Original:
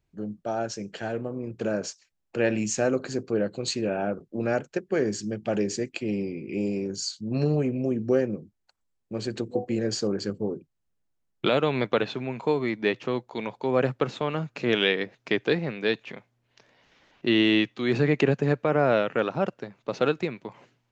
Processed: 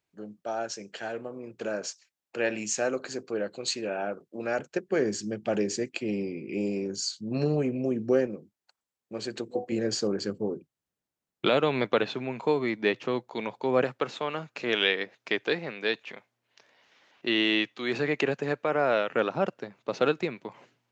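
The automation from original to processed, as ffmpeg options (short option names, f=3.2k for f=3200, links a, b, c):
-af "asetnsamples=n=441:p=0,asendcmd='4.59 highpass f 190;8.27 highpass f 430;9.72 highpass f 180;13.84 highpass f 560;19.11 highpass f 200',highpass=f=610:p=1"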